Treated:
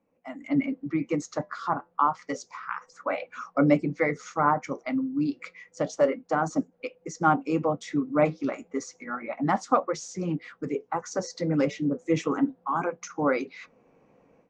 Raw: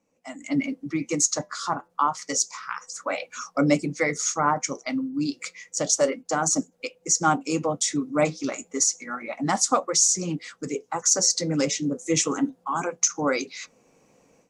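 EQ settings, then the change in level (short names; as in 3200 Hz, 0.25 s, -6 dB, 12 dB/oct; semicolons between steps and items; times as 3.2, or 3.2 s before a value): LPF 2000 Hz 12 dB/oct; 0.0 dB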